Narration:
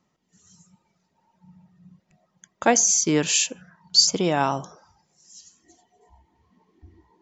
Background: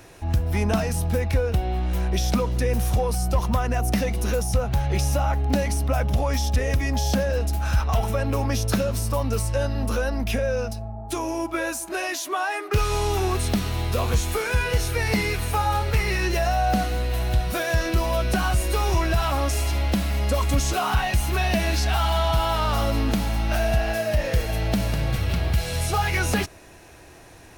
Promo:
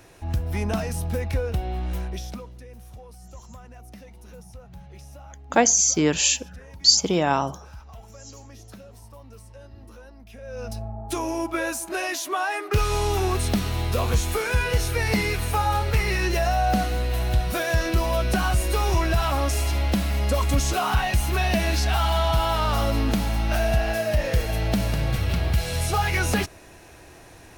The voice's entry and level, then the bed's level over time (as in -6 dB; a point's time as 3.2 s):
2.90 s, +0.5 dB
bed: 1.94 s -3.5 dB
2.65 s -21.5 dB
10.32 s -21.5 dB
10.76 s 0 dB